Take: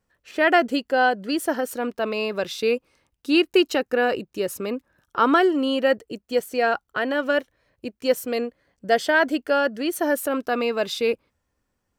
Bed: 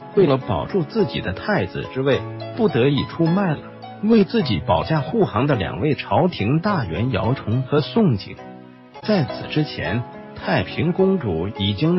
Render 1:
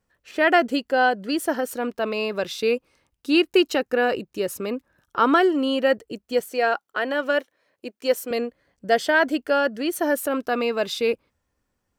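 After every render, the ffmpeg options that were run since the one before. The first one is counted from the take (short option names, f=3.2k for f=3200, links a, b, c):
-filter_complex "[0:a]asettb=1/sr,asplit=3[a][b][c];[a]atrim=end=6.514[d];[b]atrim=start=6.51:end=8.31,asetpts=PTS-STARTPTS,afade=t=in:d=0.004:c=qsin,afade=t=out:st=1.796:d=0.004:c=qsin,highpass=290[e];[c]atrim=start=8.306[f];[d][e]acrossfade=d=0.004:c1=hsin:c2=qsin[g];[g][f]acrossfade=d=0.004:c1=qsin:c2=hsin"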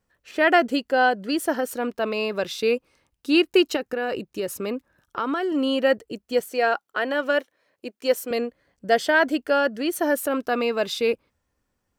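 -filter_complex "[0:a]asettb=1/sr,asplit=3[a][b][c];[a]atrim=end=3.764[d];[b]atrim=start=3.76:end=5.52,asetpts=PTS-STARTPTS,afade=t=in:d=0.004:c=qsin,afade=t=out:st=1.756:d=0.004:c=qsin,acompressor=threshold=-22dB:ratio=6:attack=3.2:release=140:knee=1:detection=peak[e];[c]atrim=start=5.516[f];[d][e]acrossfade=d=0.004:c1=hsin:c2=qsin[g];[g][f]acrossfade=d=0.004:c1=qsin:c2=hsin"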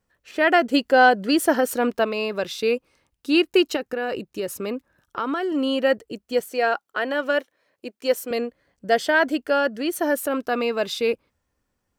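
-filter_complex "[0:a]asplit=3[a][b][c];[a]afade=t=out:st=0.73:d=0.02[d];[b]acontrast=28,afade=t=in:st=0.73:d=0.02,afade=t=out:st=2.03:d=0.02[e];[c]afade=t=in:st=2.03:d=0.02[f];[d][e][f]amix=inputs=3:normalize=0"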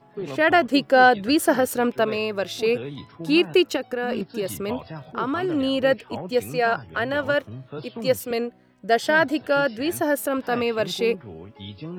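-filter_complex "[1:a]volume=-17dB[a];[0:a][a]amix=inputs=2:normalize=0"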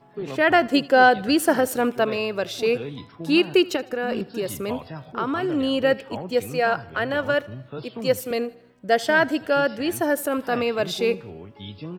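-af "aecho=1:1:78|156|234|312:0.0794|0.0421|0.0223|0.0118"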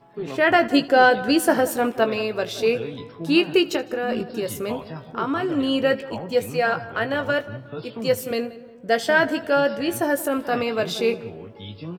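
-filter_complex "[0:a]asplit=2[a][b];[b]adelay=18,volume=-8.5dB[c];[a][c]amix=inputs=2:normalize=0,asplit=2[d][e];[e]adelay=179,lowpass=f=1.6k:p=1,volume=-15.5dB,asplit=2[f][g];[g]adelay=179,lowpass=f=1.6k:p=1,volume=0.5,asplit=2[h][i];[i]adelay=179,lowpass=f=1.6k:p=1,volume=0.5,asplit=2[j][k];[k]adelay=179,lowpass=f=1.6k:p=1,volume=0.5,asplit=2[l][m];[m]adelay=179,lowpass=f=1.6k:p=1,volume=0.5[n];[d][f][h][j][l][n]amix=inputs=6:normalize=0"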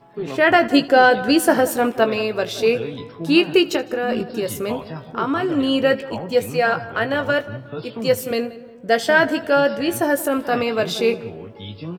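-af "volume=3dB,alimiter=limit=-3dB:level=0:latency=1"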